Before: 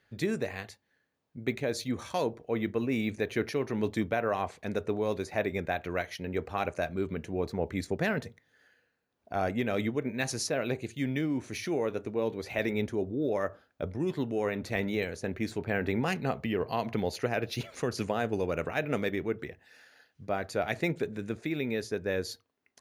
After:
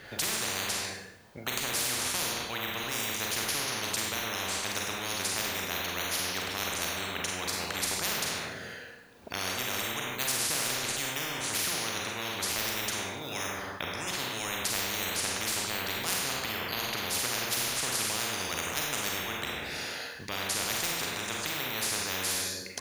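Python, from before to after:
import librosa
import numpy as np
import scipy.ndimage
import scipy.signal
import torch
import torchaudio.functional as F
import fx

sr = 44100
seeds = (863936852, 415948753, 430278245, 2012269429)

y = fx.rev_schroeder(x, sr, rt60_s=0.66, comb_ms=32, drr_db=-1.0)
y = fx.spectral_comp(y, sr, ratio=10.0)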